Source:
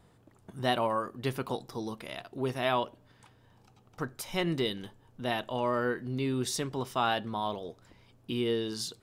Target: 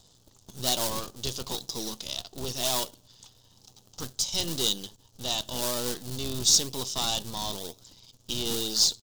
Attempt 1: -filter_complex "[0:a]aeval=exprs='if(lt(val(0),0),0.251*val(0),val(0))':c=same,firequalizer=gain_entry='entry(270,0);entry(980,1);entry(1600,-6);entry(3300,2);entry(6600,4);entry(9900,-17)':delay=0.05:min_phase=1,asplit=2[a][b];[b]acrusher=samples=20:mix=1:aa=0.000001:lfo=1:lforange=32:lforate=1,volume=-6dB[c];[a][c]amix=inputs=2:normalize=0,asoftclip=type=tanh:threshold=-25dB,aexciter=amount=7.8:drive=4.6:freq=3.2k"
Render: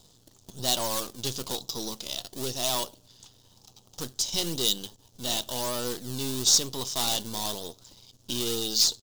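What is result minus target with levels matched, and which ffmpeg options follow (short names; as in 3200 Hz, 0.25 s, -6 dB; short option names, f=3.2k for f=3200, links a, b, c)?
decimation with a swept rate: distortion -9 dB
-filter_complex "[0:a]aeval=exprs='if(lt(val(0),0),0.251*val(0),val(0))':c=same,firequalizer=gain_entry='entry(270,0);entry(980,1);entry(1600,-6);entry(3300,2);entry(6600,4);entry(9900,-17)':delay=0.05:min_phase=1,asplit=2[a][b];[b]acrusher=samples=71:mix=1:aa=0.000001:lfo=1:lforange=114:lforate=1,volume=-6dB[c];[a][c]amix=inputs=2:normalize=0,asoftclip=type=tanh:threshold=-25dB,aexciter=amount=7.8:drive=4.6:freq=3.2k"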